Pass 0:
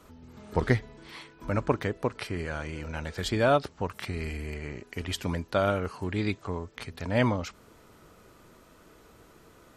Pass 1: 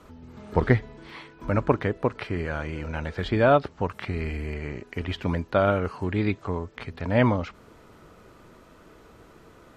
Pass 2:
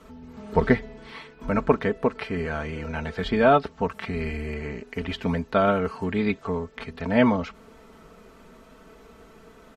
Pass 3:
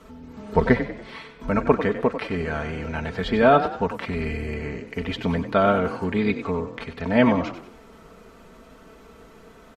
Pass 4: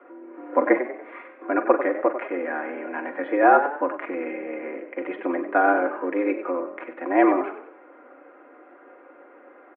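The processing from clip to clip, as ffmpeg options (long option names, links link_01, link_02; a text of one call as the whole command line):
ffmpeg -i in.wav -filter_complex "[0:a]acrossover=split=3800[link_01][link_02];[link_02]acompressor=threshold=-56dB:ratio=4:attack=1:release=60[link_03];[link_01][link_03]amix=inputs=2:normalize=0,aemphasis=mode=reproduction:type=cd,volume=4dB" out.wav
ffmpeg -i in.wav -af "aecho=1:1:4.5:0.68" out.wav
ffmpeg -i in.wav -filter_complex "[0:a]asplit=5[link_01][link_02][link_03][link_04][link_05];[link_02]adelay=95,afreqshift=33,volume=-10.5dB[link_06];[link_03]adelay=190,afreqshift=66,volume=-18.5dB[link_07];[link_04]adelay=285,afreqshift=99,volume=-26.4dB[link_08];[link_05]adelay=380,afreqshift=132,volume=-34.4dB[link_09];[link_01][link_06][link_07][link_08][link_09]amix=inputs=5:normalize=0,volume=1.5dB" out.wav
ffmpeg -i in.wav -filter_complex "[0:a]asplit=2[link_01][link_02];[link_02]adelay=44,volume=-13dB[link_03];[link_01][link_03]amix=inputs=2:normalize=0,highpass=frequency=190:width_type=q:width=0.5412,highpass=frequency=190:width_type=q:width=1.307,lowpass=frequency=2100:width_type=q:width=0.5176,lowpass=frequency=2100:width_type=q:width=0.7071,lowpass=frequency=2100:width_type=q:width=1.932,afreqshift=90" out.wav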